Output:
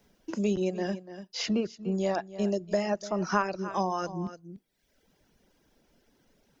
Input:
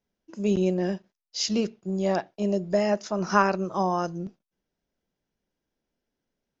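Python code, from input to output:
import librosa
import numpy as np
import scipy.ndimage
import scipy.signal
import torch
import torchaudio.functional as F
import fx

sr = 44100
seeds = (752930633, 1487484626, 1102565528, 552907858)

p1 = fx.dereverb_blind(x, sr, rt60_s=0.85)
p2 = p1 + fx.echo_single(p1, sr, ms=292, db=-18.0, dry=0)
p3 = fx.band_squash(p2, sr, depth_pct=70)
y = F.gain(torch.from_numpy(p3), -2.5).numpy()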